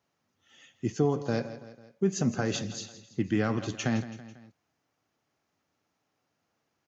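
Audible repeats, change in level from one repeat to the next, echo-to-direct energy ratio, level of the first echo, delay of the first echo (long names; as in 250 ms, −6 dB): 3, −5.5 dB, −12.5 dB, −14.0 dB, 165 ms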